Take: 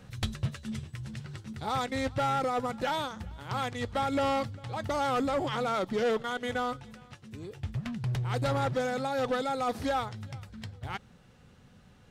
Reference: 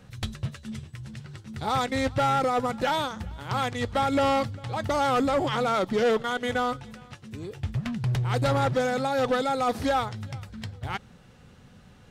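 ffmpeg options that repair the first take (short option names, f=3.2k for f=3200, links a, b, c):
-af "asetnsamples=n=441:p=0,asendcmd='1.53 volume volume 5dB',volume=0dB"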